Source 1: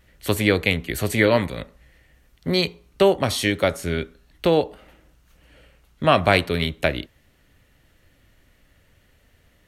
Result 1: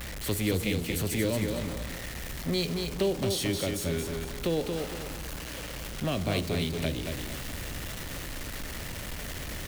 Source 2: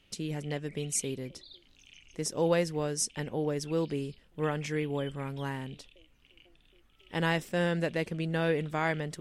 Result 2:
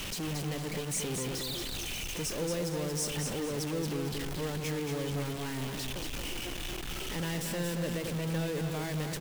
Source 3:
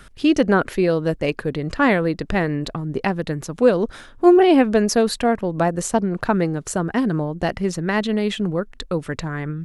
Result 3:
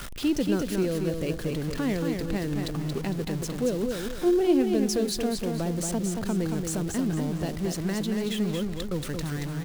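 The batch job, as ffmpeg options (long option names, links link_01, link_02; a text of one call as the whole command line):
ffmpeg -i in.wav -filter_complex "[0:a]aeval=exprs='val(0)+0.5*0.0708*sgn(val(0))':channel_layout=same,acrossover=split=480|3000[link_01][link_02][link_03];[link_02]acompressor=threshold=-33dB:ratio=4[link_04];[link_01][link_04][link_03]amix=inputs=3:normalize=0,aecho=1:1:228|456|684|912:0.562|0.191|0.065|0.0221,volume=-9dB" out.wav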